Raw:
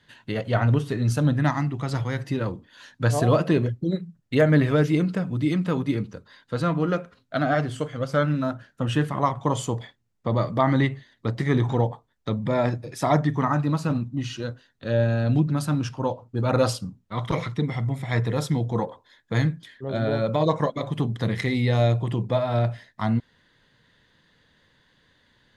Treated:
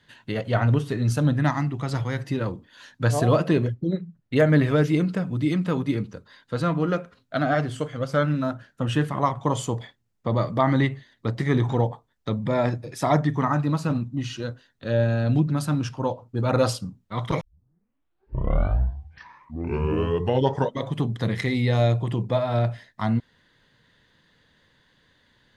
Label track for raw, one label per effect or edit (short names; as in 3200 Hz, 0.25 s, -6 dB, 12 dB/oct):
3.740000	4.360000	high shelf 4700 Hz -11.5 dB
17.410000	17.410000	tape start 3.57 s